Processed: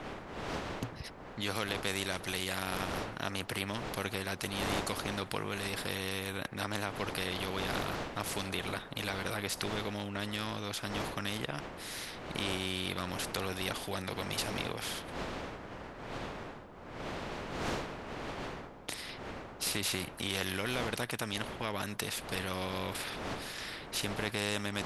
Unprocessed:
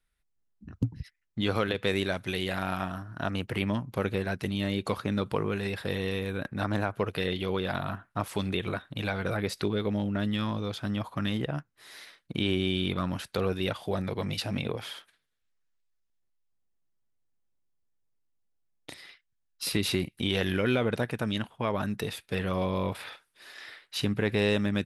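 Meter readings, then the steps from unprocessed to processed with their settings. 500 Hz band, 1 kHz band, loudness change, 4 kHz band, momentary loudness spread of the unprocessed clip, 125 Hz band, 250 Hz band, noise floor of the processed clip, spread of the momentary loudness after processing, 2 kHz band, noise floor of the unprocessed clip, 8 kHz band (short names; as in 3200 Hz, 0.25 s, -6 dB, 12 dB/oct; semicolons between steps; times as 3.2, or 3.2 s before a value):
-7.0 dB, -1.5 dB, -6.0 dB, -1.0 dB, 11 LU, -8.5 dB, -9.0 dB, -48 dBFS, 8 LU, -1.5 dB, -76 dBFS, +5.5 dB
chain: wind noise 550 Hz -38 dBFS; spectral compressor 2:1; gain -5.5 dB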